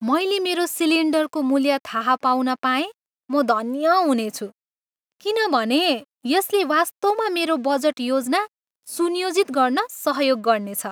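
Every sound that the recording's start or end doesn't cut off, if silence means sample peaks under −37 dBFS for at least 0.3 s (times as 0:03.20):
0:03.30–0:04.50
0:05.21–0:08.46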